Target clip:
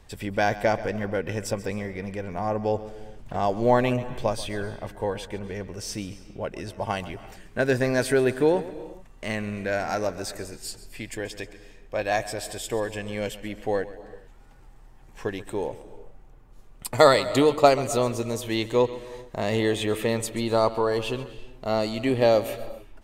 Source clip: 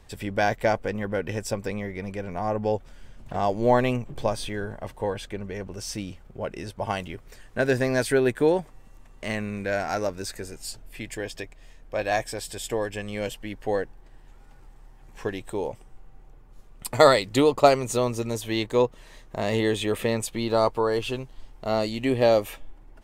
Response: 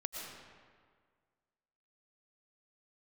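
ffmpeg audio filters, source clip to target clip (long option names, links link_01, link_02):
-filter_complex "[0:a]asplit=2[link_01][link_02];[1:a]atrim=start_sample=2205,afade=type=out:start_time=0.36:duration=0.01,atrim=end_sample=16317,adelay=134[link_03];[link_02][link_03]afir=irnorm=-1:irlink=0,volume=-13.5dB[link_04];[link_01][link_04]amix=inputs=2:normalize=0"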